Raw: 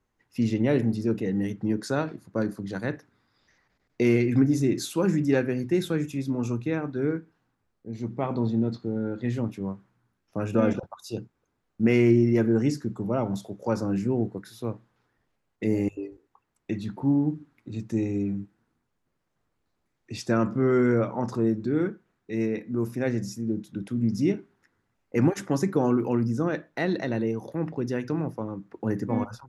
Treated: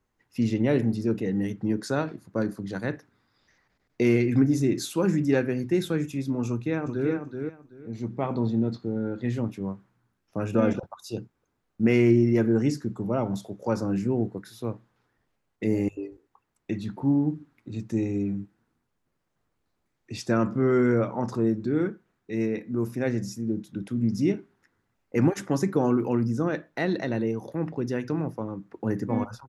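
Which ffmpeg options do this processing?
-filter_complex "[0:a]asplit=2[s0][s1];[s1]afade=t=in:st=6.48:d=0.01,afade=t=out:st=7.11:d=0.01,aecho=0:1:380|760|1140:0.501187|0.100237|0.0200475[s2];[s0][s2]amix=inputs=2:normalize=0"

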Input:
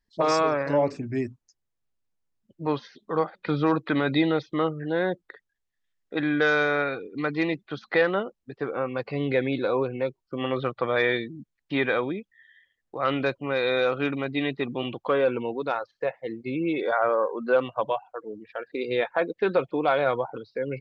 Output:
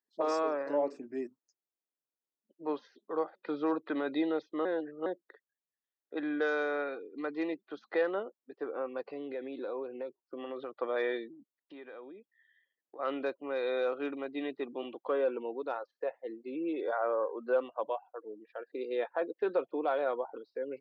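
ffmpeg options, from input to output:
-filter_complex "[0:a]asettb=1/sr,asplit=3[s0][s1][s2];[s0]atrim=end=9.114[s3];[s1]atrim=start=9.11:end=10.74,asetpts=PTS-STARTPTS,afade=t=in:d=0.004:c=qsin,afade=t=out:st=1.626:d=0.004:c=qsin,acompressor=threshold=0.0501:ratio=6:attack=3.2:release=140:knee=1:detection=peak[s4];[s2]atrim=start=10.736[s5];[s3][s4]acrossfade=d=0.004:c1=hsin:c2=qsin[s6];[s6][s5]acrossfade=d=0.004:c1=qsin:c2=hsin,asettb=1/sr,asplit=3[s7][s8][s9];[s7]atrim=end=11.334[s10];[s8]atrim=start=11.33:end=12.99,asetpts=PTS-STARTPTS,afade=t=in:d=0.004:c=qsin,afade=t=out:st=1.656:d=0.004:c=qsin,acompressor=threshold=0.01:ratio=3:attack=3.2:release=140:knee=1:detection=peak[s11];[s9]atrim=start=12.986[s12];[s10][s11]acrossfade=d=0.004:c1=hsin:c2=qsin[s13];[s13][s12]acrossfade=d=0.004:c1=qsin:c2=hsin,asplit=3[s14][s15][s16];[s14]atrim=end=4.652[s17];[s15]atrim=start=4.648:end=5.062,asetpts=PTS-STARTPTS,areverse[s18];[s16]atrim=start=5.058[s19];[s17][s18]acrossfade=d=0.004:c1=hsin:c2=hsin[s20];[s20][s19]acrossfade=d=0.004:c1=hsin:c2=hsin,highpass=f=290:w=0.5412,highpass=f=290:w=1.3066,equalizer=f=3700:w=0.33:g=-9,bandreject=f=2200:w=12,volume=0.531"

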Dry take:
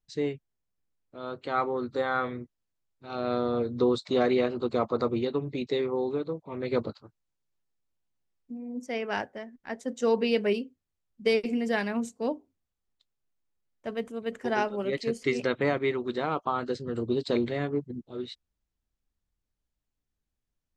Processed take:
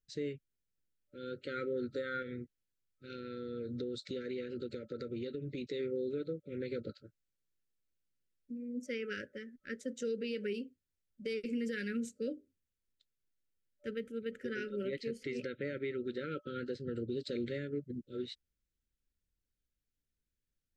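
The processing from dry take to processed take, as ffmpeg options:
-filter_complex "[0:a]asettb=1/sr,asplit=3[s0][s1][s2];[s0]atrim=end=2.224[s3];[s1]atrim=start=2.22:end=5.64,asetpts=PTS-STARTPTS,afade=t=in:d=0.004:c=qsin,afade=t=out:st=3.416:d=0.004:c=qsin,acompressor=threshold=0.0251:ratio=6:attack=3.2:release=140:knee=1:detection=peak[s4];[s2]atrim=start=5.636[s5];[s3][s4]acrossfade=d=0.004:c1=hsin:c2=qsin[s6];[s6][s5]acrossfade=d=0.004:c1=qsin:c2=hsin,asettb=1/sr,asplit=3[s7][s8][s9];[s7]atrim=end=13.904[s10];[s8]atrim=start=13.9:end=17.09,asetpts=PTS-STARTPTS,afade=t=in:d=0.004:c=qsin,afade=t=out:st=3.186:d=0.004:c=qsin,equalizer=f=7300:t=o:w=1.1:g=-7.5[s11];[s9]atrim=start=17.086[s12];[s10][s11]acrossfade=d=0.004:c1=hsin:c2=qsin[s13];[s13][s12]acrossfade=d=0.004:c1=qsin:c2=hsin,afftfilt=real='re*(1-between(b*sr/4096,590,1300))':imag='im*(1-between(b*sr/4096,590,1300))':win_size=4096:overlap=0.75,alimiter=level_in=1.12:limit=0.0631:level=0:latency=1:release=151,volume=0.891,volume=0.631"

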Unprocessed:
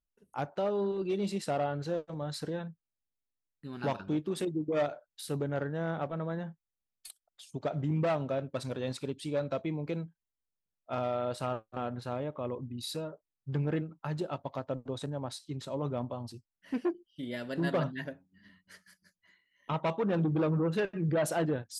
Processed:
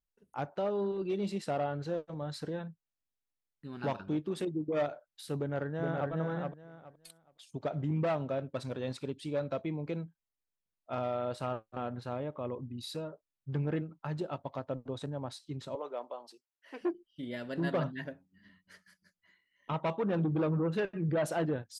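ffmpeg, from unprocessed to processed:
-filter_complex "[0:a]asplit=2[s0][s1];[s1]afade=t=in:st=5.37:d=0.01,afade=t=out:st=6.11:d=0.01,aecho=0:1:420|840|1260:0.707946|0.141589|0.0283178[s2];[s0][s2]amix=inputs=2:normalize=0,asettb=1/sr,asplit=3[s3][s4][s5];[s3]atrim=end=15.754[s6];[s4]atrim=start=15.75:end=16.81,asetpts=PTS-STARTPTS,afade=t=in:d=0.004:c=qsin,afade=t=out:st=1.056:d=0.004:c=qsin,highpass=f=410:w=0.5412,highpass=f=410:w=1.3066[s7];[s5]atrim=start=16.806[s8];[s6][s7]acrossfade=d=0.004:c1=hsin:c2=qsin[s9];[s9][s8]acrossfade=d=0.004:c1=qsin:c2=hsin,highshelf=f=6300:g=-7.5,volume=0.841"

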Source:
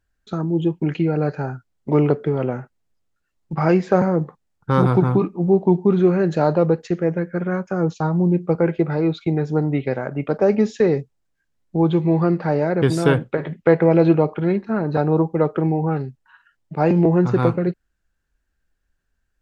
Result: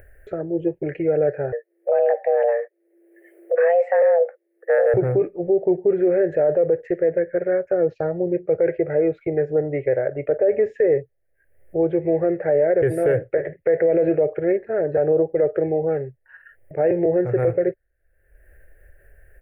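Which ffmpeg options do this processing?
-filter_complex "[0:a]asettb=1/sr,asplit=3[s0][s1][s2];[s0]atrim=end=1.524[s3];[s1]atrim=start=1.52:end=4.94,asetpts=PTS-STARTPTS,afade=t=in:d=0.004:c=qsin,afade=t=out:st=3.416:d=0.004:c=qsin,afreqshift=340[s4];[s2]atrim=start=4.936[s5];[s3][s4]acrossfade=d=0.004:c1=hsin:c2=qsin[s6];[s6][s5]acrossfade=d=0.004:c1=qsin:c2=hsin,asettb=1/sr,asplit=3[s7][s8][s9];[s7]atrim=end=7.824[s10];[s8]atrim=start=7.82:end=8.78,asetpts=PTS-STARTPTS,afade=t=in:d=0.004:c=qsin,afade=t=out:st=0.956:d=0.004:c=qsin,lowpass=f=4600:t=q:w=3.8[s11];[s9]atrim=start=8.776[s12];[s10][s11]acrossfade=d=0.004:c1=hsin:c2=qsin[s13];[s13][s12]acrossfade=d=0.004:c1=qsin:c2=hsin,acompressor=mode=upward:threshold=0.0355:ratio=2.5,firequalizer=gain_entry='entry(110,0);entry(200,-21);entry(380,3);entry(570,10);entry(1000,-22);entry(1800,5);entry(3600,-29);entry(6700,-28);entry(9700,-1)':delay=0.05:min_phase=1,alimiter=limit=0.299:level=0:latency=1:release=27"

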